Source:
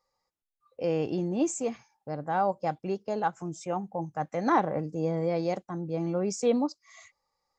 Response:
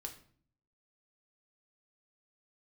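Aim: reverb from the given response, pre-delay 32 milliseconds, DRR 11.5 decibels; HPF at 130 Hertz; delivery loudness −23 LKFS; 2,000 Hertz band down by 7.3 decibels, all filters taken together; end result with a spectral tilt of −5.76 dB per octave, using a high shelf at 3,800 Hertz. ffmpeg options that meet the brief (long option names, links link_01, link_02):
-filter_complex "[0:a]highpass=130,equalizer=frequency=2000:width_type=o:gain=-9,highshelf=frequency=3800:gain=-6,asplit=2[link_01][link_02];[1:a]atrim=start_sample=2205,adelay=32[link_03];[link_02][link_03]afir=irnorm=-1:irlink=0,volume=-8.5dB[link_04];[link_01][link_04]amix=inputs=2:normalize=0,volume=8dB"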